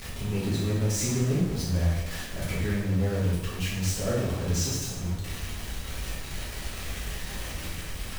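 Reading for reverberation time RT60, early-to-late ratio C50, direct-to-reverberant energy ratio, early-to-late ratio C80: 1.0 s, 1.0 dB, -8.0 dB, 4.0 dB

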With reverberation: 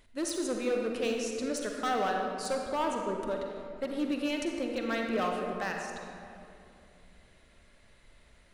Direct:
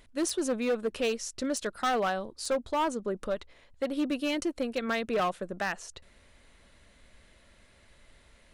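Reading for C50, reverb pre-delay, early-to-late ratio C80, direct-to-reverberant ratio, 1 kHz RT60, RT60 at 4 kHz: 2.0 dB, 40 ms, 3.0 dB, 1.0 dB, 2.4 s, 1.4 s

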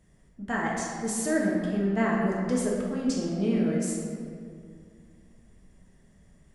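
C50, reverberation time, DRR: 0.0 dB, 2.2 s, -4.0 dB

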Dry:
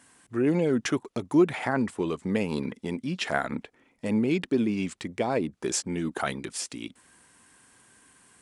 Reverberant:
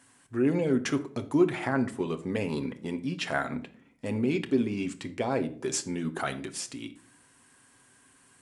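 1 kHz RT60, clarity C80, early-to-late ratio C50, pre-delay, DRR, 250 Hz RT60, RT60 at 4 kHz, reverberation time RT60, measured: 0.45 s, 19.0 dB, 15.0 dB, 7 ms, 6.5 dB, 0.75 s, 0.30 s, 0.50 s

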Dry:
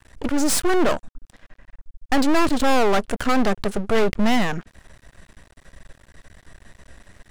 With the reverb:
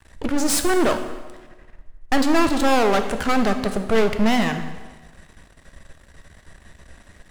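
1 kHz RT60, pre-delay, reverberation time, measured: 1.3 s, 5 ms, 1.3 s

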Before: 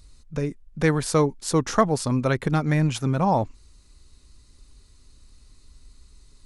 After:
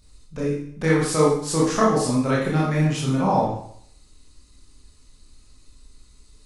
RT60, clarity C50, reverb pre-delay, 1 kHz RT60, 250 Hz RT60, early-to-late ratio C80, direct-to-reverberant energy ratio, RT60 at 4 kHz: 0.65 s, 0.5 dB, 18 ms, 0.65 s, 0.65 s, 5.5 dB, -6.0 dB, 0.65 s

